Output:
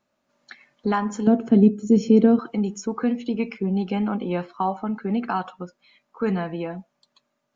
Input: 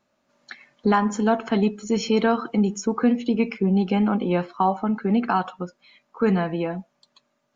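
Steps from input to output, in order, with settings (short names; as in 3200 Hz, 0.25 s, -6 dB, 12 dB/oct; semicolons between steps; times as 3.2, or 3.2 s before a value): 1.27–2.39 ten-band EQ 125 Hz +9 dB, 250 Hz +9 dB, 500 Hz +6 dB, 1000 Hz -11 dB, 2000 Hz -6 dB, 4000 Hz -8 dB; gain -3.5 dB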